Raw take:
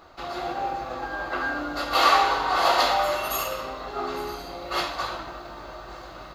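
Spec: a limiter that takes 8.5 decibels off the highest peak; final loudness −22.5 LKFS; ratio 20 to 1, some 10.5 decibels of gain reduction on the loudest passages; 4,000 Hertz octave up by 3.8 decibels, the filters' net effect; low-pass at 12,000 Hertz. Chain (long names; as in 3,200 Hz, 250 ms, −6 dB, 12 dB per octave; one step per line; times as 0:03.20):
low-pass filter 12,000 Hz
parametric band 4,000 Hz +4.5 dB
downward compressor 20 to 1, threshold −23 dBFS
level +9.5 dB
brickwall limiter −13 dBFS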